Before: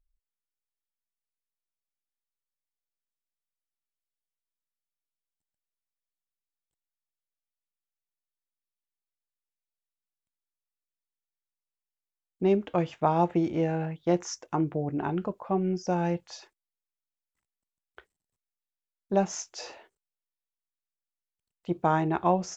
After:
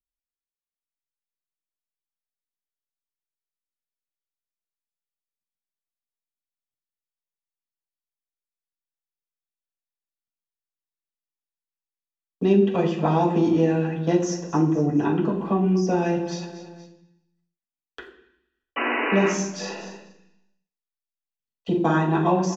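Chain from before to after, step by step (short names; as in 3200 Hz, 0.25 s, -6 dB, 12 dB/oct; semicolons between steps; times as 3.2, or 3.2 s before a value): feedback echo 0.234 s, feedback 39%, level -16 dB; gate -59 dBFS, range -29 dB; Butterworth band-stop 2200 Hz, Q 6.8; bell 740 Hz -8 dB 2.6 oct; 18.76–19.29 painted sound noise 230–3000 Hz -37 dBFS; 19.17–21.96 doubler 42 ms -4.5 dB; reverb RT60 0.65 s, pre-delay 3 ms, DRR -6 dB; three-band squash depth 40%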